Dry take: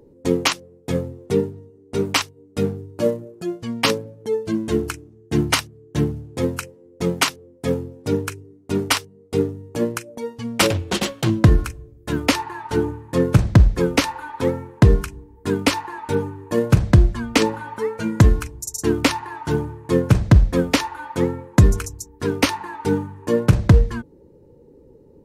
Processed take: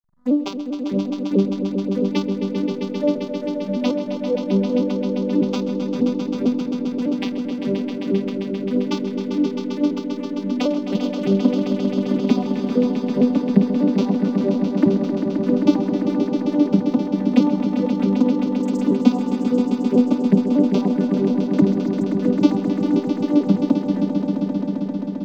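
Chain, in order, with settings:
vocoder with an arpeggio as carrier major triad, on G3, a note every 150 ms
slack as between gear wheels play −40 dBFS
phaser swept by the level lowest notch 430 Hz, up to 1,800 Hz, full sweep at −20 dBFS
on a send: echo that builds up and dies away 132 ms, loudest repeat 5, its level −8.5 dB

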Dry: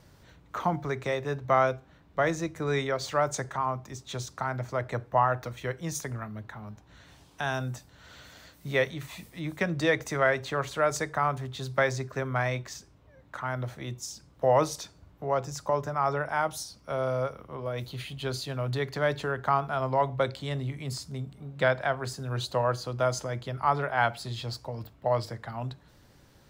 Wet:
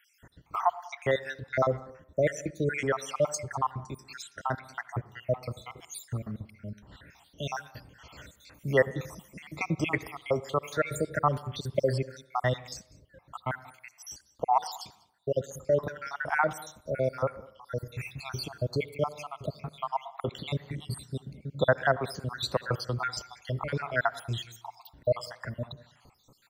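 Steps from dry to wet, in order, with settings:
time-frequency cells dropped at random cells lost 70%
single-tap delay 196 ms −23.5 dB
on a send at −18 dB: convolution reverb RT60 0.75 s, pre-delay 65 ms
on the sum: level +4 dB

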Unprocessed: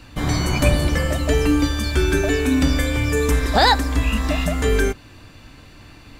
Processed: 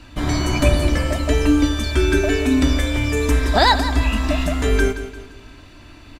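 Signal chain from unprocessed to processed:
high-shelf EQ 12,000 Hz −9.5 dB
comb filter 3.1 ms, depth 39%
repeating echo 173 ms, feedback 40%, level −12 dB

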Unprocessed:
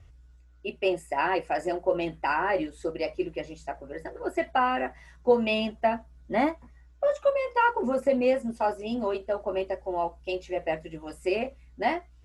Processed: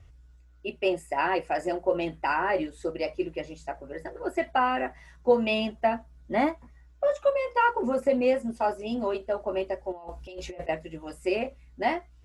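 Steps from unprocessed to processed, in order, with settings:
0:09.92–0:10.69: compressor whose output falls as the input rises −40 dBFS, ratio −1

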